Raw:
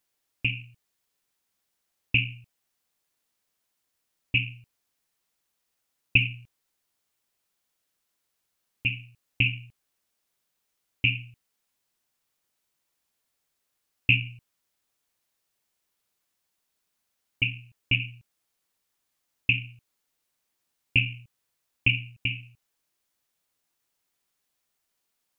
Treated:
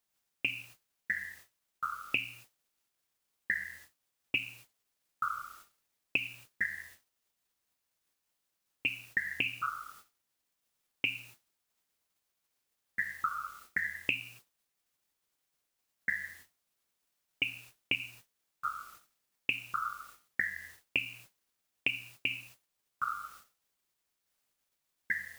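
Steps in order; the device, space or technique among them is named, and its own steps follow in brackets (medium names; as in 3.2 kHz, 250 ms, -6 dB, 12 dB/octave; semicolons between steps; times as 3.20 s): ever faster or slower copies 467 ms, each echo -6 st, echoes 2, each echo -6 dB; baby monitor (band-pass 340–3200 Hz; compression 8:1, threshold -32 dBFS, peak gain reduction 16 dB; white noise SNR 17 dB; gate -57 dBFS, range -26 dB); trim +3.5 dB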